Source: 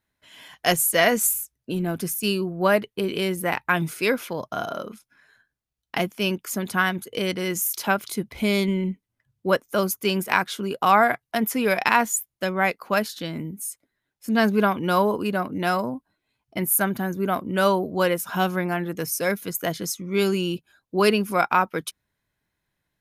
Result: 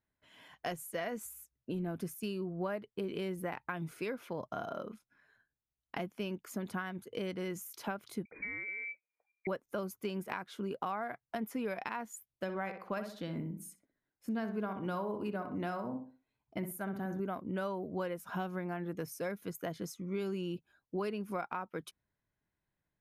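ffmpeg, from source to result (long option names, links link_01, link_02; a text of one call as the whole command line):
ffmpeg -i in.wav -filter_complex "[0:a]asettb=1/sr,asplit=3[link_01][link_02][link_03];[link_01]atrim=end=8.254[link_04];[link_02]atrim=start=8.25:end=9.47,asetpts=PTS-STARTPTS,afade=type=in:duration=0.004:curve=qsin,afade=type=out:start_time=1.216:duration=0.004:curve=qsin,lowpass=frequency=2100:width_type=q:width=0.5098,lowpass=frequency=2100:width_type=q:width=0.6013,lowpass=frequency=2100:width_type=q:width=0.9,lowpass=frequency=2100:width_type=q:width=2.563,afreqshift=-2500[link_05];[link_03]atrim=start=9.466[link_06];[link_04][link_05]acrossfade=duration=0.004:curve1=hsin:curve2=qsin[link_07];[link_07][link_06]acrossfade=duration=0.004:curve1=qsin:curve2=hsin,asettb=1/sr,asplit=3[link_08][link_09][link_10];[link_08]atrim=end=12.334[link_11];[link_09]atrim=start=12.33:end=17.2,asetpts=PTS-STARTPTS,afade=type=in:duration=0.004:curve=qsin,afade=type=out:start_time=4.866:duration=0.004:curve=qsin,asplit=2[link_12][link_13];[link_13]adelay=62,lowpass=frequency=2200:poles=1,volume=-8dB,asplit=2[link_14][link_15];[link_15]adelay=62,lowpass=frequency=2200:poles=1,volume=0.33,asplit=2[link_16][link_17];[link_17]adelay=62,lowpass=frequency=2200:poles=1,volume=0.33,asplit=2[link_18][link_19];[link_19]adelay=62,lowpass=frequency=2200:poles=1,volume=0.33[link_20];[link_12][link_14][link_16][link_18][link_20]amix=inputs=5:normalize=0,atrim=end_sample=214767[link_21];[link_10]atrim=start=17.196[link_22];[link_11][link_21]acrossfade=duration=0.004:curve1=hsin:curve2=qsin[link_23];[link_23][link_22]acrossfade=duration=0.004:curve1=qsin:curve2=hsin,acompressor=threshold=-26dB:ratio=6,highshelf=frequency=2500:gain=-11.5,volume=-7dB" out.wav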